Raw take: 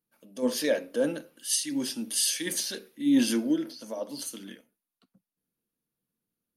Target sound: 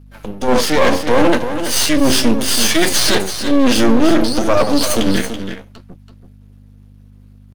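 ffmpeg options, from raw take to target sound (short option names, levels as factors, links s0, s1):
-filter_complex "[0:a]flanger=delay=6.9:depth=9:regen=37:speed=0.77:shape=triangular,areverse,acompressor=threshold=0.0141:ratio=8,areverse,atempo=0.87,aemphasis=mode=reproduction:type=50fm,aeval=exprs='max(val(0),0)':c=same,aeval=exprs='val(0)+0.000178*(sin(2*PI*50*n/s)+sin(2*PI*2*50*n/s)/2+sin(2*PI*3*50*n/s)/3+sin(2*PI*4*50*n/s)/4+sin(2*PI*5*50*n/s)/5)':c=same,acontrast=37,apsyclip=47.3,asplit=2[s0][s1];[s1]aecho=0:1:331:0.355[s2];[s0][s2]amix=inputs=2:normalize=0,volume=0.631"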